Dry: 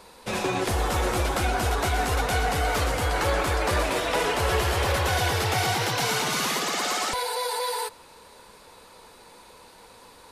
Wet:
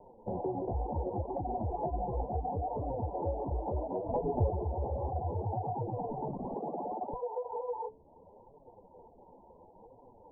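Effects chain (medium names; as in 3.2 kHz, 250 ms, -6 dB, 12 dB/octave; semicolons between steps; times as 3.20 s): 5.86–6.57 s: one-bit delta coder 64 kbps, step -44.5 dBFS; steep low-pass 920 Hz 96 dB/octave; 1.71–2.22 s: comb 5.9 ms, depth 97%; flange 0.7 Hz, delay 6.6 ms, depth 9.7 ms, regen 0%; de-hum 147.6 Hz, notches 3; reverb removal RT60 0.63 s; compression 2.5:1, threshold -35 dBFS, peak gain reduction 8.5 dB; 4.06–4.52 s: bass shelf 260 Hz +11 dB; trim +1.5 dB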